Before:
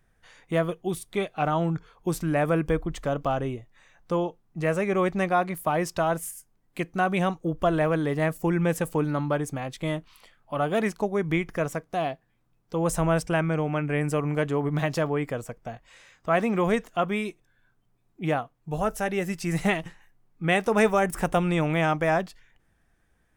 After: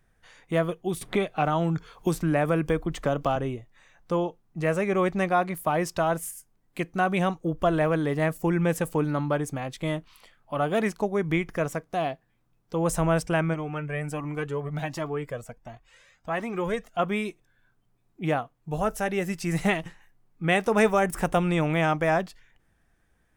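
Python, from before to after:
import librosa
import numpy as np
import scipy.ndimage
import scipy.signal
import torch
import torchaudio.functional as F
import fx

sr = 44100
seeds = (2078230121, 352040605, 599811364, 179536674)

y = fx.band_squash(x, sr, depth_pct=70, at=(1.01, 3.36))
y = fx.comb_cascade(y, sr, direction='rising', hz=1.4, at=(13.53, 16.98), fade=0.02)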